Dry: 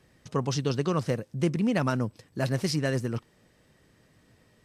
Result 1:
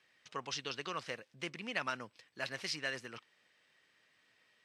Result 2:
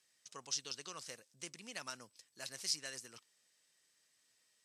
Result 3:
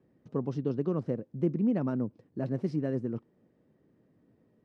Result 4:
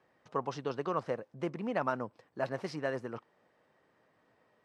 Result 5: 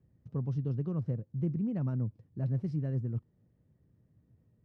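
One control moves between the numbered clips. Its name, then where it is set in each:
band-pass, frequency: 2600, 7300, 280, 880, 100 Hz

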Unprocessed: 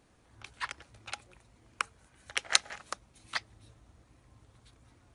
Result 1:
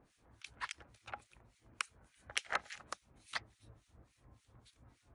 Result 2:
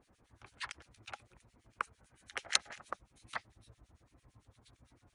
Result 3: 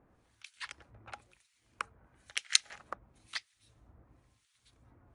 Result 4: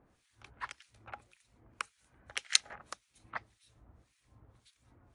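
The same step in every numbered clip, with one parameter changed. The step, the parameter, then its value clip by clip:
harmonic tremolo, rate: 3.5, 8.9, 1, 1.8 Hz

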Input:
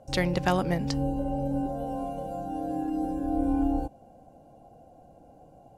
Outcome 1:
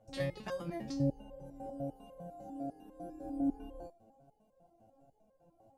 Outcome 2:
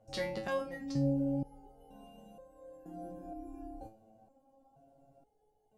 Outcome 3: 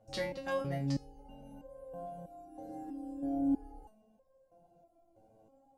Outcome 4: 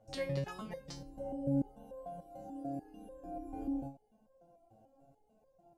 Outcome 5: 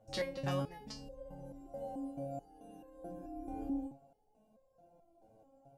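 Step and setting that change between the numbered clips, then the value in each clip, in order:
stepped resonator, rate: 10, 2.1, 3.1, 6.8, 4.6 Hz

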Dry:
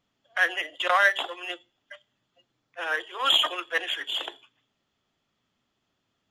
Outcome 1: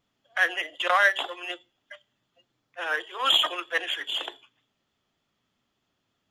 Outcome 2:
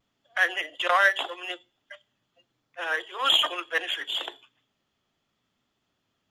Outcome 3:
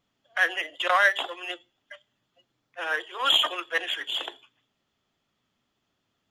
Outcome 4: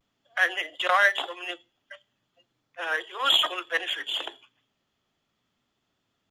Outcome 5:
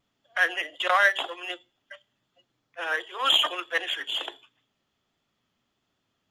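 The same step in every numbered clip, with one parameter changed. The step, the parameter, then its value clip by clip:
vibrato, rate: 3.3, 0.76, 8, 0.38, 1.4 Hz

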